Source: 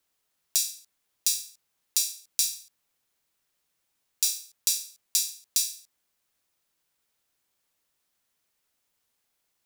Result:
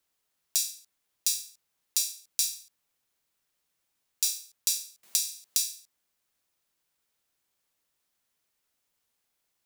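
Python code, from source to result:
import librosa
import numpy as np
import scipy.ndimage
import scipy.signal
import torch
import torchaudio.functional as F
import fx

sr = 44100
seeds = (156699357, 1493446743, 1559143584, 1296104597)

y = fx.band_squash(x, sr, depth_pct=70, at=(5.03, 5.58))
y = F.gain(torch.from_numpy(y), -2.0).numpy()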